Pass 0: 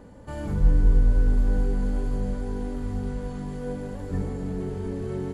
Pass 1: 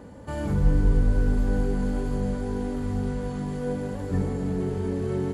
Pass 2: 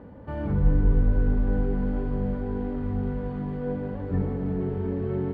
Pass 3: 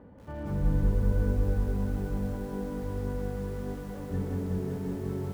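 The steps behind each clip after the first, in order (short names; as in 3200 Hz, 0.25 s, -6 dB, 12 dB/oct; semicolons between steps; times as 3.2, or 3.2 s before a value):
HPF 55 Hz; gain +3.5 dB
air absorption 460 m
lo-fi delay 0.185 s, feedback 80%, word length 8-bit, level -4 dB; gain -6.5 dB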